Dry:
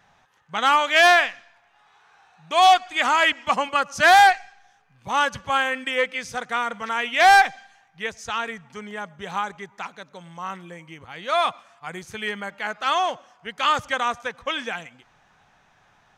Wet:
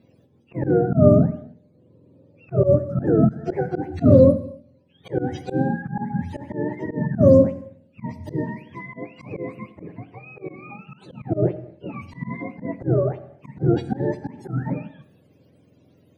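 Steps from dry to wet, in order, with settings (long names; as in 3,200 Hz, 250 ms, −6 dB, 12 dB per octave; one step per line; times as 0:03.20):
frequency axis turned over on the octave scale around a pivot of 650 Hz
reverb whose tail is shaped and stops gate 310 ms falling, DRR 11.5 dB
volume swells 102 ms
level +1.5 dB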